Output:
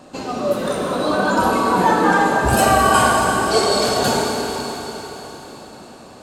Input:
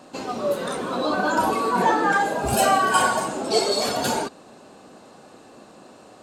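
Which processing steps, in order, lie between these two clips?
low-shelf EQ 120 Hz +11 dB
comb and all-pass reverb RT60 4.3 s, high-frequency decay 1×, pre-delay 15 ms, DRR 0.5 dB
level +2 dB

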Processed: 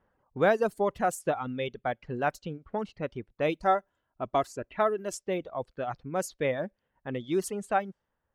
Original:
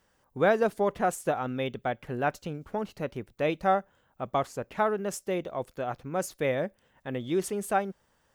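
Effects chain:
0:03.61–0:05.23: comb filter 3 ms, depth 41%
low-pass that shuts in the quiet parts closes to 1,400 Hz, open at −25 dBFS
reverb reduction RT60 1.3 s

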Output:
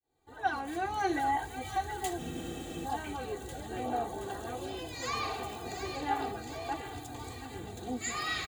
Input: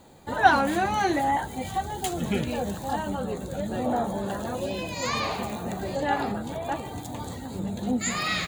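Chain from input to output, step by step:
fade in at the beginning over 1.25 s
comb filter 2.6 ms, depth 77%
delay with a high-pass on its return 723 ms, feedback 55%, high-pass 1,600 Hz, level −6 dB
frozen spectrum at 0:02.21, 0.63 s
level −9 dB

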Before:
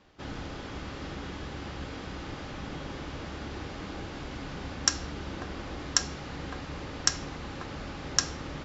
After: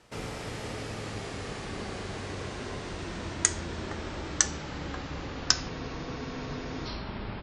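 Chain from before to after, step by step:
gliding playback speed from 163% → 70%
frozen spectrum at 0:05.72, 1.15 s
level +1.5 dB

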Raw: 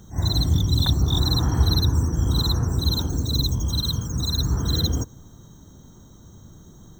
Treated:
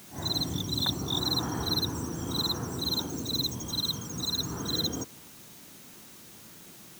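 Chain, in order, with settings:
high-pass filter 220 Hz 12 dB per octave
bit-depth reduction 8 bits, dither triangular
level −3 dB

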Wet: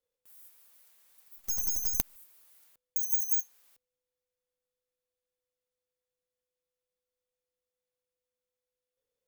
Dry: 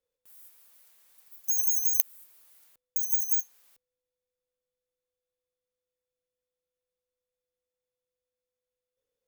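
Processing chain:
0:01.38–0:02.16: gain on one half-wave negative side −12 dB
level −2 dB

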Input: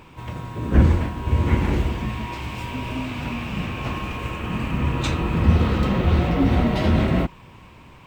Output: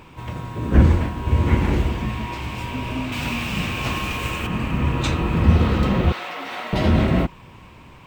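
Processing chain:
0:03.12–0:04.47: high-shelf EQ 2,700 Hz +11.5 dB
0:06.12–0:06.73: high-pass filter 970 Hz 12 dB per octave
level +1.5 dB

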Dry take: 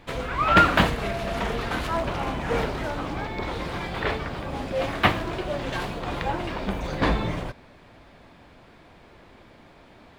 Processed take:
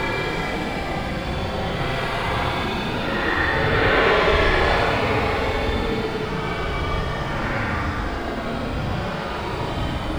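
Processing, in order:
feedback delay with all-pass diffusion 1,347 ms, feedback 42%, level −15.5 dB
extreme stretch with random phases 18×, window 0.05 s, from 0:03.84
level +6.5 dB

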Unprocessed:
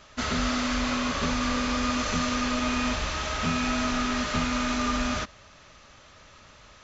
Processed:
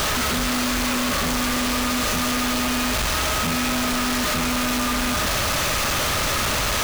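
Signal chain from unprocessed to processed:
sign of each sample alone
level +6 dB

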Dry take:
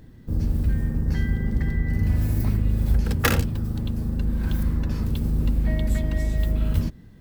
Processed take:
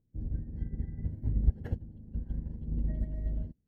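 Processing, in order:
moving average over 36 samples
time stretch by phase vocoder 0.51×
expander for the loud parts 2.5 to 1, over −35 dBFS

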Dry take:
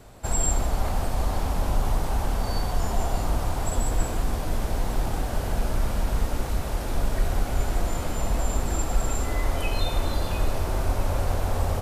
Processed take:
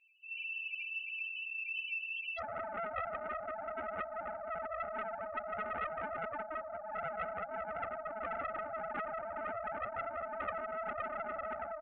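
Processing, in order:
compressing power law on the bin magnitudes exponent 0.15
comb filter 3.4 ms, depth 77%
automatic gain control gain up to 6 dB
four-pole ladder band-pass 2,900 Hz, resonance 65%, from 0:02.37 770 Hz
spectral peaks only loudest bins 2
high-frequency loss of the air 350 metres
highs frequency-modulated by the lows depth 0.65 ms
level +6.5 dB

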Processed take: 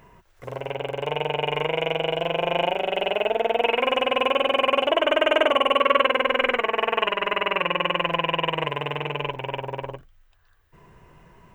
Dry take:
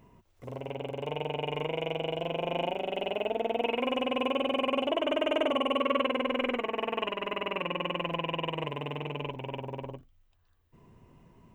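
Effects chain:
graphic EQ with 15 bands 100 Hz −7 dB, 250 Hz −11 dB, 1,600 Hz +8 dB
level +8.5 dB

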